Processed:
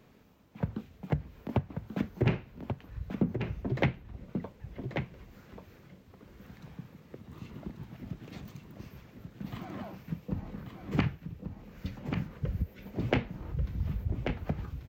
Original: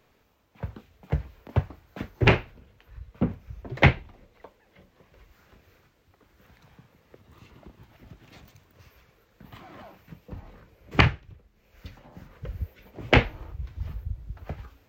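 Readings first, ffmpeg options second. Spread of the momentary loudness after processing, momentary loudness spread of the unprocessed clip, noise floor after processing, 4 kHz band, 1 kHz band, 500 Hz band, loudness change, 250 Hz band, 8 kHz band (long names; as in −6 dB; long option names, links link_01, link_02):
19 LU, 22 LU, −57 dBFS, −13.0 dB, −10.0 dB, −6.0 dB, −9.5 dB, −1.5 dB, can't be measured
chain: -filter_complex "[0:a]equalizer=frequency=190:width_type=o:width=1.7:gain=11.5,acompressor=threshold=-27dB:ratio=5,asplit=2[link_01][link_02];[link_02]aecho=0:1:1137:0.473[link_03];[link_01][link_03]amix=inputs=2:normalize=0"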